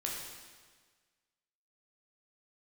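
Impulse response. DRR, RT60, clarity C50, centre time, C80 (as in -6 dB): -3.0 dB, 1.5 s, 1.5 dB, 73 ms, 3.0 dB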